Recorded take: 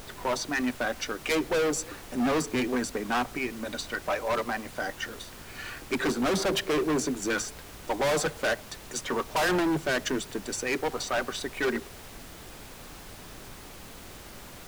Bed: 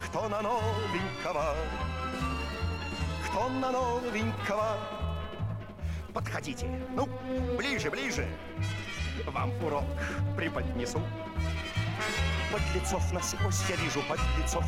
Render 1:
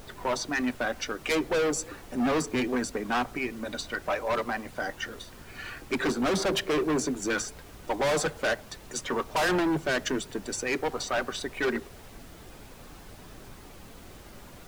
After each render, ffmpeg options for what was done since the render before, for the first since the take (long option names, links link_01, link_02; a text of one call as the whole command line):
ffmpeg -i in.wav -af "afftdn=noise_reduction=6:noise_floor=-46" out.wav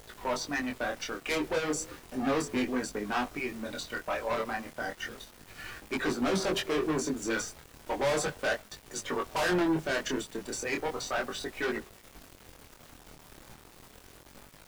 ffmpeg -i in.wav -af "aeval=exprs='val(0)*gte(abs(val(0)),0.0075)':channel_layout=same,flanger=delay=19:depth=7.7:speed=0.34" out.wav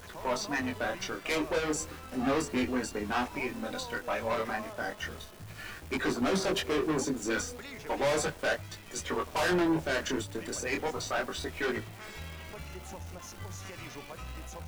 ffmpeg -i in.wav -i bed.wav -filter_complex "[1:a]volume=-13.5dB[link_01];[0:a][link_01]amix=inputs=2:normalize=0" out.wav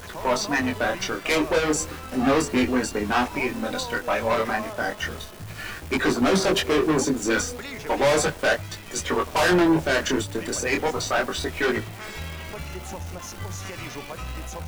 ffmpeg -i in.wav -af "volume=8.5dB" out.wav